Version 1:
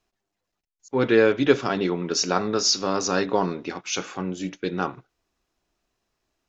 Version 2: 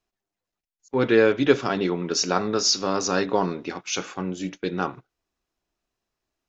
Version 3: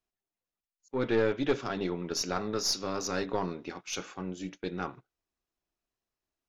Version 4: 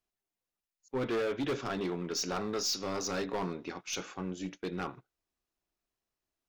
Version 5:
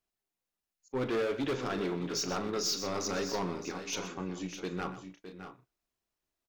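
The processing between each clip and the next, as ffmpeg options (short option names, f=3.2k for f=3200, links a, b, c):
-af "agate=range=-6dB:threshold=-38dB:ratio=16:detection=peak"
-af "aeval=exprs='(tanh(3.55*val(0)+0.45)-tanh(0.45))/3.55':c=same,volume=-6.5dB"
-af "volume=28.5dB,asoftclip=hard,volume=-28.5dB"
-af "aecho=1:1:40|125|612|644:0.178|0.211|0.282|0.15"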